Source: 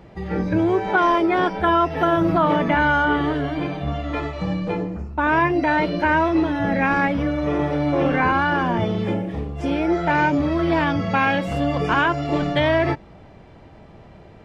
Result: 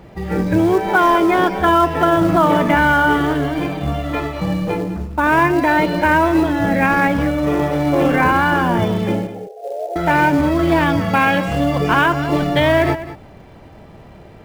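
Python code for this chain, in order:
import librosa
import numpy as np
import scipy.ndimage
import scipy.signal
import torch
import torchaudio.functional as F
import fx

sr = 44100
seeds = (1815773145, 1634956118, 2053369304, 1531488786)

p1 = fx.cheby1_bandpass(x, sr, low_hz=400.0, high_hz=800.0, order=5, at=(9.27, 9.96))
p2 = fx.quant_float(p1, sr, bits=2)
p3 = p1 + (p2 * librosa.db_to_amplitude(-4.0))
y = p3 + 10.0 ** (-14.0 / 20.0) * np.pad(p3, (int(201 * sr / 1000.0), 0))[:len(p3)]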